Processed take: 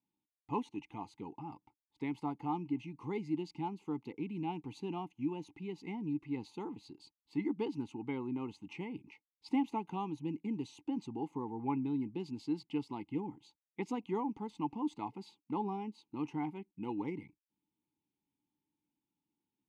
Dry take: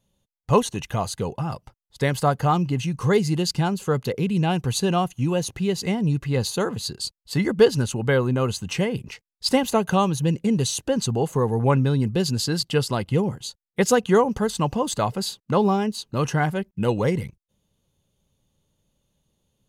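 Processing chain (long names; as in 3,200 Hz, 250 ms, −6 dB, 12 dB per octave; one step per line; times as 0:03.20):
formant filter u
level −3 dB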